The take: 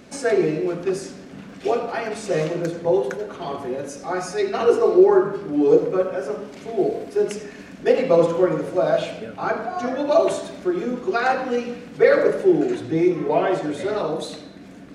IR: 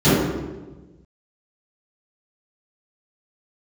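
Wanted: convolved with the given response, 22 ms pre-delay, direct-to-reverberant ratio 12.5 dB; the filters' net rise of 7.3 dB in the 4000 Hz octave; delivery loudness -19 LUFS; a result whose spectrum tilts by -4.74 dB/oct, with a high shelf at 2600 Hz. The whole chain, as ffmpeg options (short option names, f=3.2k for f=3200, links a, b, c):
-filter_complex "[0:a]highshelf=f=2.6k:g=4,equalizer=f=4k:t=o:g=5.5,asplit=2[a][b];[1:a]atrim=start_sample=2205,adelay=22[c];[b][c]afir=irnorm=-1:irlink=0,volume=-38dB[d];[a][d]amix=inputs=2:normalize=0,volume=0.5dB"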